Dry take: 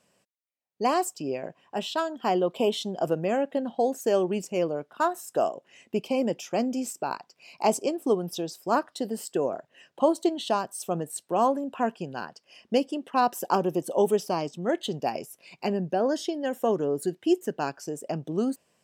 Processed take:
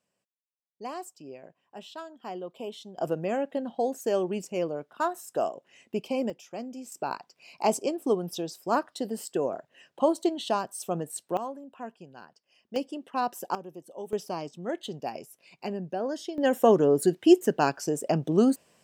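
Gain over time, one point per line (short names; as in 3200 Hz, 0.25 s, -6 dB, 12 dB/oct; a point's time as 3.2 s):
-13 dB
from 2.98 s -3 dB
from 6.3 s -11 dB
from 6.92 s -1.5 dB
from 11.37 s -13 dB
from 12.76 s -5.5 dB
from 13.55 s -16.5 dB
from 14.13 s -6 dB
from 16.38 s +5.5 dB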